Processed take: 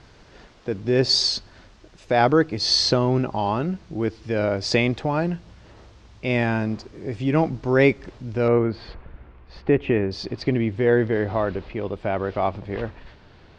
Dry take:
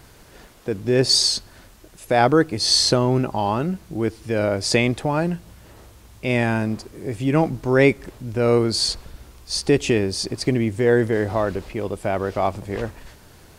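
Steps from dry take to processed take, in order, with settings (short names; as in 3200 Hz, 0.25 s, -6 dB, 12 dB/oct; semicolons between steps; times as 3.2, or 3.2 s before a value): LPF 5700 Hz 24 dB/oct, from 8.48 s 2400 Hz, from 10.11 s 4200 Hz; gain -1.5 dB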